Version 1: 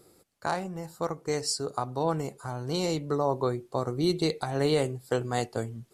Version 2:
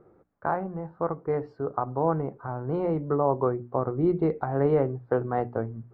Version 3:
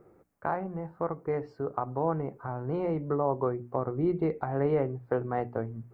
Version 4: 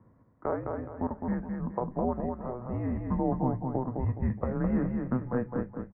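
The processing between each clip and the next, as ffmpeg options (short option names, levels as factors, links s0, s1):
-af "lowpass=f=1500:w=0.5412,lowpass=f=1500:w=1.3066,bandreject=f=60:t=h:w=6,bandreject=f=120:t=h:w=6,bandreject=f=180:t=h:w=6,bandreject=f=240:t=h:w=6,bandreject=f=300:t=h:w=6,volume=1.41"
-filter_complex "[0:a]asplit=2[s0][s1];[s1]acompressor=threshold=0.0282:ratio=6,volume=0.708[s2];[s0][s2]amix=inputs=2:normalize=0,aexciter=amount=1:drive=8.8:freq=2000,volume=0.531"
-filter_complex "[0:a]asplit=2[s0][s1];[s1]aecho=0:1:210|420|630|840:0.596|0.203|0.0689|0.0234[s2];[s0][s2]amix=inputs=2:normalize=0,highpass=f=310:t=q:w=0.5412,highpass=f=310:t=q:w=1.307,lowpass=f=2500:t=q:w=0.5176,lowpass=f=2500:t=q:w=0.7071,lowpass=f=2500:t=q:w=1.932,afreqshift=-250"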